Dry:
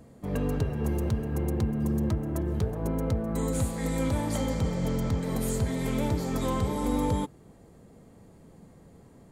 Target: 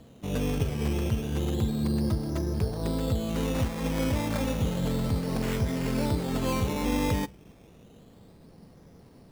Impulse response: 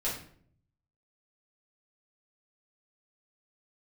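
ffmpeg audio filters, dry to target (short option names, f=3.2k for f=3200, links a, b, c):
-filter_complex "[0:a]asplit=2[a][b];[1:a]atrim=start_sample=2205[c];[b][c]afir=irnorm=-1:irlink=0,volume=-28dB[d];[a][d]amix=inputs=2:normalize=0,acrusher=samples=12:mix=1:aa=0.000001:lfo=1:lforange=7.2:lforate=0.31"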